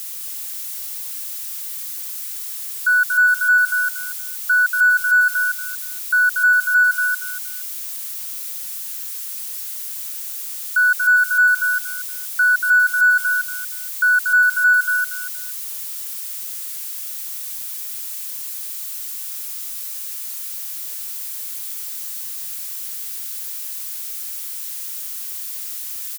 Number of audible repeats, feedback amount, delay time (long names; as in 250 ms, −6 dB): 3, 24%, 235 ms